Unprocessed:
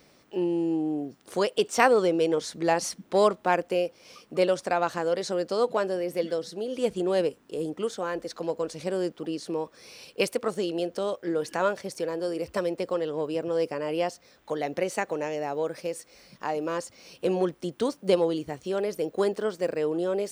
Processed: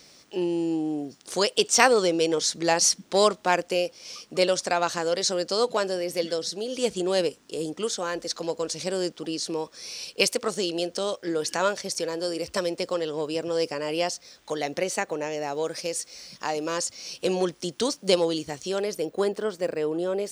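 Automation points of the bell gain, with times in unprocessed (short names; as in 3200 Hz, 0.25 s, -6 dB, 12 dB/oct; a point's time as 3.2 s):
bell 5900 Hz 1.9 oct
14.6 s +13.5 dB
15.19 s +4.5 dB
15.64 s +15 dB
18.65 s +15 dB
19.2 s +3 dB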